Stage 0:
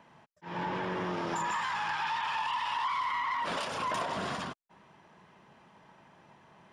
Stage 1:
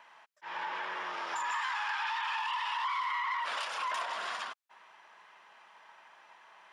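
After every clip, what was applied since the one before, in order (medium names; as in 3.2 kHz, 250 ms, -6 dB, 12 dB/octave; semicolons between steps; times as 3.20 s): high-pass 1.1 kHz 12 dB/octave; treble shelf 4.2 kHz -6.5 dB; in parallel at +2 dB: compression, threshold -47 dBFS, peak gain reduction 13.5 dB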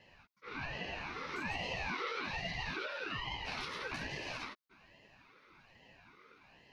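static phaser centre 1.7 kHz, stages 8; chorus voices 2, 0.36 Hz, delay 12 ms, depth 3.5 ms; ring modulator with a swept carrier 750 Hz, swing 45%, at 1.2 Hz; trim +4.5 dB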